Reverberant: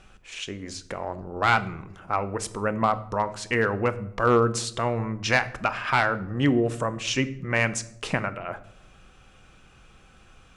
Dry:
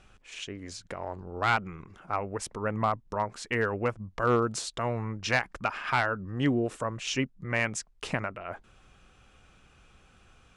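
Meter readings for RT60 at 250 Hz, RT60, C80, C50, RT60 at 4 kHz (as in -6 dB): 1.1 s, 0.75 s, 19.0 dB, 16.5 dB, 0.45 s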